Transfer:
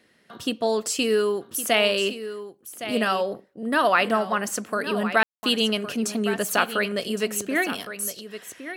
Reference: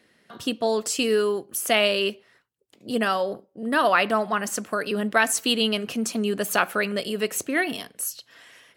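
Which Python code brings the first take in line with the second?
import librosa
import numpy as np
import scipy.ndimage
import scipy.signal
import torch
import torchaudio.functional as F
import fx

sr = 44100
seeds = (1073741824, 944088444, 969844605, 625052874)

y = fx.fix_ambience(x, sr, seeds[0], print_start_s=0.0, print_end_s=0.5, start_s=5.23, end_s=5.43)
y = fx.fix_echo_inverse(y, sr, delay_ms=1113, level_db=-12.0)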